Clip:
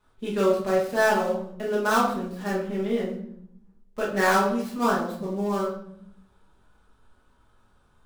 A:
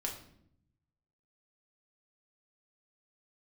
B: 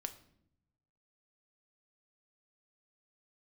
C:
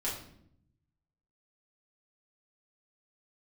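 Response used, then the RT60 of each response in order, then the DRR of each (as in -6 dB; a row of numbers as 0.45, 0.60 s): C; 0.70, 0.70, 0.70 s; -0.5, 8.0, -7.5 dB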